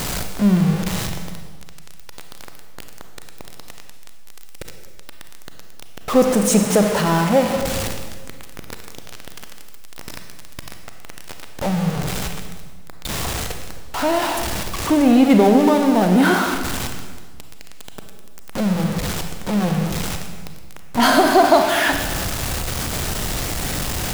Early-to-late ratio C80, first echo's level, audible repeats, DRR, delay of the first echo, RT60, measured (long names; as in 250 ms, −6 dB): 7.5 dB, no echo audible, no echo audible, 5.0 dB, no echo audible, 1.4 s